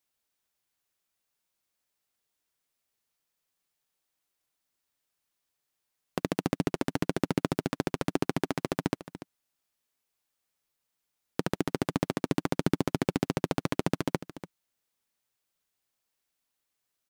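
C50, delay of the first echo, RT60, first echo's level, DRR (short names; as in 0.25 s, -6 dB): none, 0.29 s, none, -14.0 dB, none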